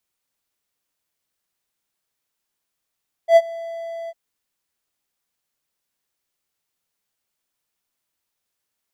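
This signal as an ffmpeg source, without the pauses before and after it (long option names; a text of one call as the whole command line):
ffmpeg -f lavfi -i "aevalsrc='0.668*(1-4*abs(mod(667*t+0.25,1)-0.5))':duration=0.852:sample_rate=44100,afade=type=in:duration=0.083,afade=type=out:start_time=0.083:duration=0.046:silence=0.075,afade=type=out:start_time=0.81:duration=0.042" out.wav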